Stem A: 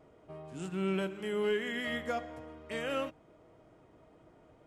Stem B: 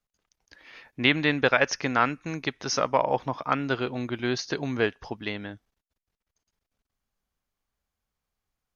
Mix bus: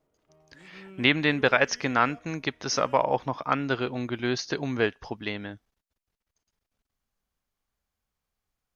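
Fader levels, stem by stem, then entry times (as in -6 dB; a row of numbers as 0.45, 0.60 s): -15.0, 0.0 dB; 0.00, 0.00 s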